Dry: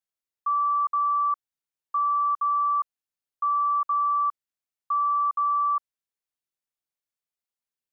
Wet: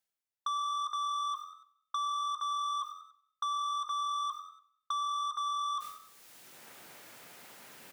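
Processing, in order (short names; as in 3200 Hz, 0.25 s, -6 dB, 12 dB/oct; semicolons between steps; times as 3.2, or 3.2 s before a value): notch 1100 Hz, Q 17; expander -34 dBFS; reverse; upward compressor, threshold -36 dBFS; reverse; limiter -29 dBFS, peak gain reduction 8 dB; soft clip -39.5 dBFS, distortion -11 dB; frequency-shifting echo 96 ms, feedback 33%, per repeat +44 Hz, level -14 dB; on a send at -23 dB: reverb RT60 0.50 s, pre-delay 0.14 s; on the sum: three-band squash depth 70%; gain +7.5 dB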